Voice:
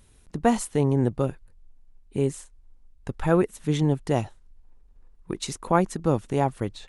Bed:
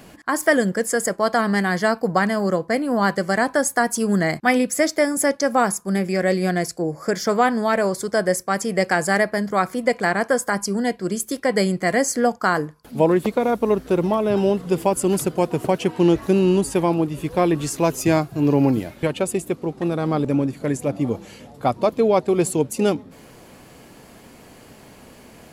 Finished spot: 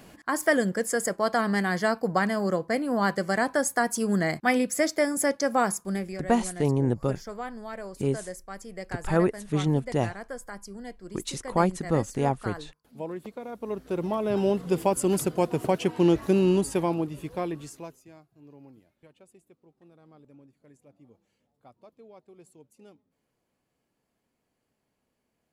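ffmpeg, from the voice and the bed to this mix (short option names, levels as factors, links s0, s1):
-filter_complex "[0:a]adelay=5850,volume=0.794[s0];[1:a]volume=2.66,afade=t=out:st=5.8:d=0.42:silence=0.223872,afade=t=in:st=13.51:d=1.08:silence=0.199526,afade=t=out:st=16.51:d=1.5:silence=0.0354813[s1];[s0][s1]amix=inputs=2:normalize=0"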